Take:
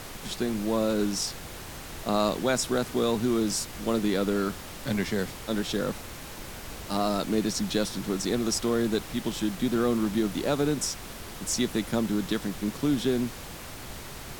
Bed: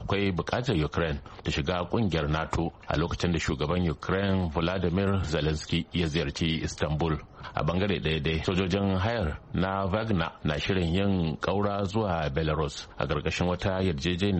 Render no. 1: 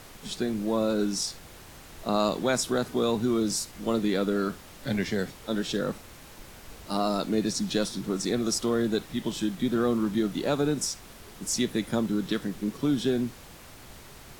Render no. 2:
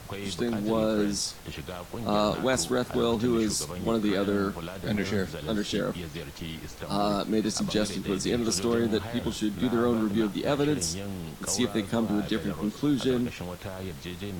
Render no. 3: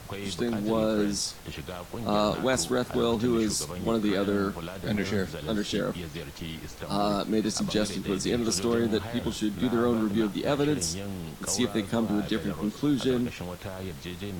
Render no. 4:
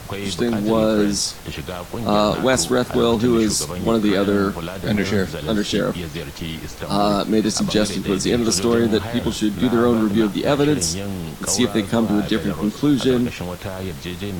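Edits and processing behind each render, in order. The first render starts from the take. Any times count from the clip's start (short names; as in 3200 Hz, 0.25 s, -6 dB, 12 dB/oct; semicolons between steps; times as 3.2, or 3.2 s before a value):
noise print and reduce 7 dB
add bed -10 dB
nothing audible
gain +8.5 dB; limiter -3 dBFS, peak gain reduction 1.5 dB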